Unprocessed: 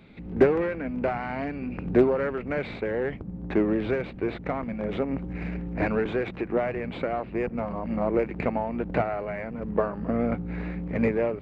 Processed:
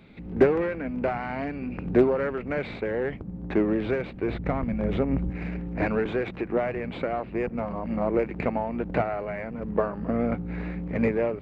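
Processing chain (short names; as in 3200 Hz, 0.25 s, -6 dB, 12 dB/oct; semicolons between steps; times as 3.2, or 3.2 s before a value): 4.28–5.3 low shelf 160 Hz +11.5 dB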